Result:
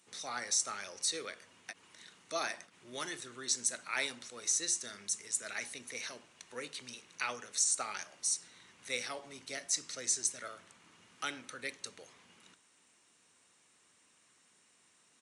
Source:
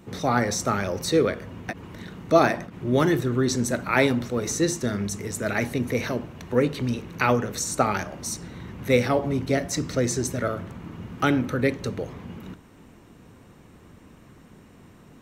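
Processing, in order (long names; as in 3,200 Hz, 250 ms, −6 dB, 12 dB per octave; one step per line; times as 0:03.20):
first difference
downsampling to 22,050 Hz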